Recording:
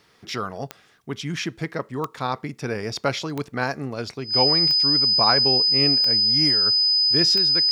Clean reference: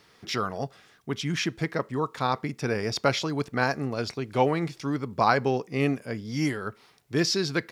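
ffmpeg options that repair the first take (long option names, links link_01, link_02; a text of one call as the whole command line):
ffmpeg -i in.wav -af "adeclick=threshold=4,bandreject=frequency=5000:width=30,asetnsamples=nb_out_samples=441:pad=0,asendcmd='7.36 volume volume 5dB',volume=0dB" out.wav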